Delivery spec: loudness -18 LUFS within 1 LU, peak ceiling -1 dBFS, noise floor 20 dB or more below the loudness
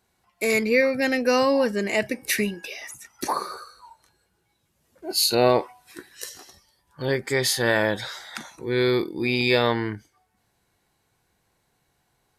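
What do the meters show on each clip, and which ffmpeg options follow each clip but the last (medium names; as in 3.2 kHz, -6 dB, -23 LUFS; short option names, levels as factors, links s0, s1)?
loudness -23.0 LUFS; peak level -7.0 dBFS; loudness target -18.0 LUFS
-> -af "volume=1.78"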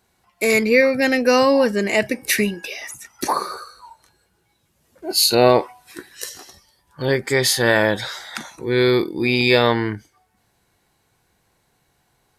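loudness -18.0 LUFS; peak level -2.0 dBFS; noise floor -66 dBFS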